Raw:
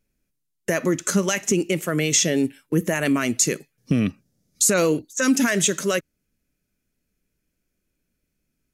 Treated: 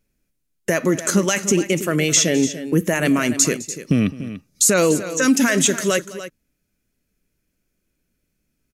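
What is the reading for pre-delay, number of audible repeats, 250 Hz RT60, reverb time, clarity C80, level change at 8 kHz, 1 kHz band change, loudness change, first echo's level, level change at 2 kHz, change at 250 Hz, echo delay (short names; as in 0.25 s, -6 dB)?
none, 2, none, none, none, +3.5 dB, +3.0 dB, +3.0 dB, -19.0 dB, +3.0 dB, +3.5 dB, 0.209 s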